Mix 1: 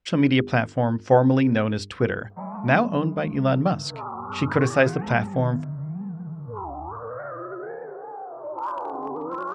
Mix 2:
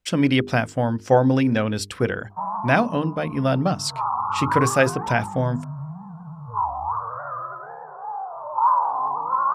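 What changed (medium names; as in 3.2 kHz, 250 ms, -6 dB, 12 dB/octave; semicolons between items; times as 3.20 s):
speech: remove distance through air 110 m; background: add FFT filter 140 Hz 0 dB, 340 Hz -21 dB, 1 kHz +14 dB, 2.9 kHz -21 dB, 4.2 kHz -6 dB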